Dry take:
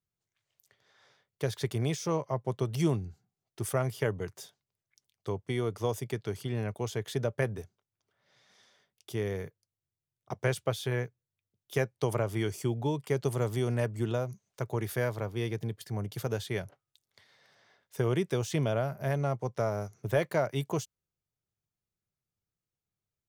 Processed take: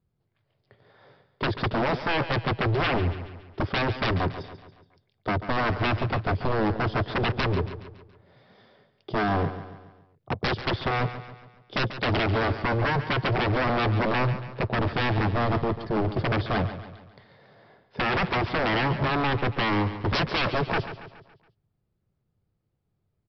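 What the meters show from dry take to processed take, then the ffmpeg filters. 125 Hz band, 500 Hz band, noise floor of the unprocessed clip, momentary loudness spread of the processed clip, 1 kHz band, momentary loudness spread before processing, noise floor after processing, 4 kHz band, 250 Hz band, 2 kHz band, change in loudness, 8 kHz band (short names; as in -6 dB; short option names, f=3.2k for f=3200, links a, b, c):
+4.5 dB, +3.0 dB, under -85 dBFS, 9 LU, +13.0 dB, 10 LU, -75 dBFS, +12.0 dB, +6.5 dB, +12.5 dB, +6.5 dB, under -10 dB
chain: -af "tiltshelf=f=1.2k:g=9.5,aresample=11025,aeval=exprs='0.0398*(abs(mod(val(0)/0.0398+3,4)-2)-1)':c=same,aresample=44100,aecho=1:1:140|280|420|560|700:0.251|0.121|0.0579|0.0278|0.0133,volume=8.5dB"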